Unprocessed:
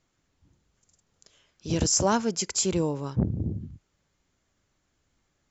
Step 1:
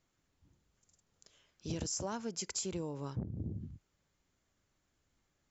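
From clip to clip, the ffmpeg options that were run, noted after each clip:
-af "acompressor=threshold=-29dB:ratio=10,volume=-5.5dB"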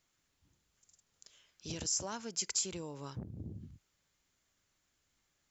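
-af "tiltshelf=f=1.2k:g=-5"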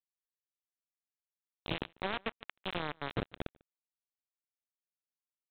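-filter_complex "[0:a]alimiter=level_in=5dB:limit=-24dB:level=0:latency=1:release=12,volume=-5dB,aresample=8000,acrusher=bits=5:mix=0:aa=0.000001,aresample=44100,asplit=2[a][b];[b]adelay=145.8,volume=-28dB,highshelf=f=4k:g=-3.28[c];[a][c]amix=inputs=2:normalize=0,volume=5.5dB"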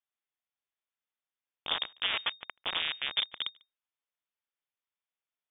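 -af "lowpass=f=3.1k:t=q:w=0.5098,lowpass=f=3.1k:t=q:w=0.6013,lowpass=f=3.1k:t=q:w=0.9,lowpass=f=3.1k:t=q:w=2.563,afreqshift=-3700,volume=5dB"

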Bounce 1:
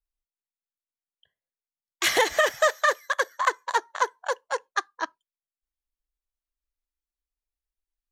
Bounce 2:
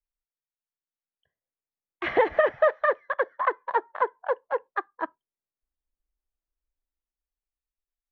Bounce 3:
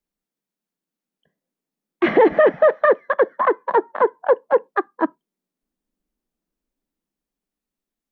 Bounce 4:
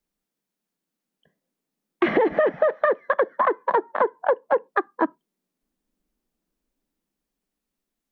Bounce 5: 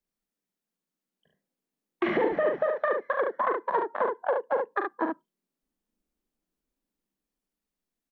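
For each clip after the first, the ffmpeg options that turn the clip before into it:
-filter_complex "[0:a]lowpass=f=2.4k:w=0.5412,lowpass=f=2.4k:w=1.3066,acrossover=split=870|1100[a][b][c];[a]dynaudnorm=f=200:g=13:m=9dB[d];[d][b][c]amix=inputs=3:normalize=0,volume=-5dB"
-af "equalizer=f=240:t=o:w=2.2:g=14.5,alimiter=limit=-11dB:level=0:latency=1:release=15,lowshelf=f=140:t=q:w=3:g=-6.5,volume=5dB"
-af "acompressor=threshold=-20dB:ratio=6,volume=3dB"
-af "aecho=1:1:41|72:0.473|0.562,volume=-7dB"

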